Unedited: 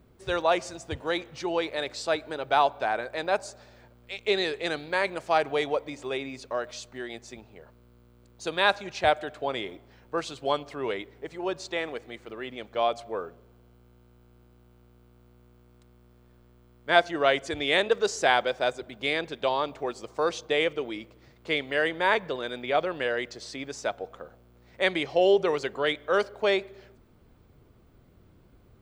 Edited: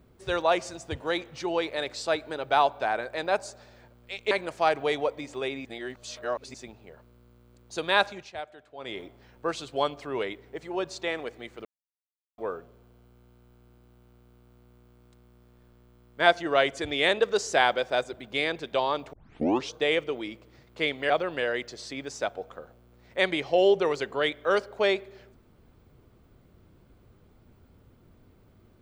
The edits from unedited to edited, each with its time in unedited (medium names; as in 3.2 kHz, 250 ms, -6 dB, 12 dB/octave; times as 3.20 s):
4.31–5.00 s: delete
6.34–7.23 s: reverse
8.77–9.70 s: dip -15 dB, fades 0.24 s
12.34–13.07 s: mute
19.82 s: tape start 0.60 s
21.79–22.73 s: delete